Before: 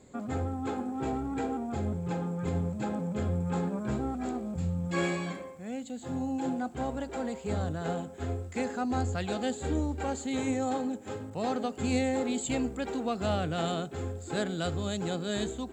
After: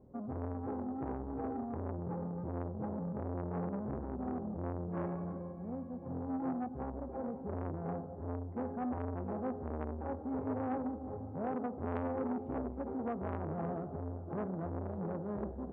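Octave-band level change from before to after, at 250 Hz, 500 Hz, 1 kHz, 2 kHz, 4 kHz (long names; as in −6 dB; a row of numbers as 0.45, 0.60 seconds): −6.5 dB, −6.5 dB, −6.5 dB, −15.0 dB, below −35 dB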